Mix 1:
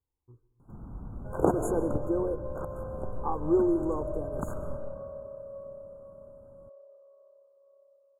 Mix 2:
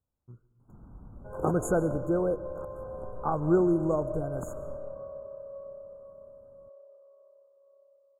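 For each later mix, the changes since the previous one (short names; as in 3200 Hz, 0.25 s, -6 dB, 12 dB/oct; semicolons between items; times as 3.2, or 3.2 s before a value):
speech: remove fixed phaser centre 940 Hz, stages 8; first sound -7.0 dB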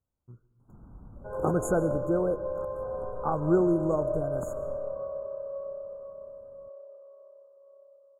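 second sound +6.0 dB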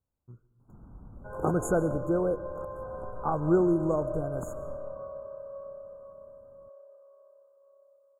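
second sound: add tilt shelf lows -9.5 dB, about 1100 Hz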